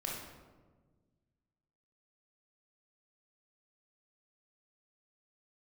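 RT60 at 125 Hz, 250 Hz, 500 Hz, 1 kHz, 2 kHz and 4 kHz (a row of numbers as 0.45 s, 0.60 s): 2.3 s, 2.0 s, 1.6 s, 1.2 s, 0.90 s, 0.70 s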